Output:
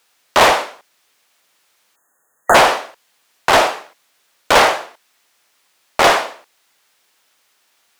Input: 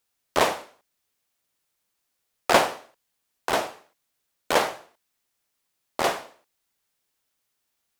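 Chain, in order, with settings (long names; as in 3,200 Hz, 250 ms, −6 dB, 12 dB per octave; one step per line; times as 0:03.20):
mid-hump overdrive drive 25 dB, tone 4,200 Hz, clips at −3.5 dBFS
time-frequency box erased 0:01.96–0:02.55, 1,900–6,300 Hz
level +2.5 dB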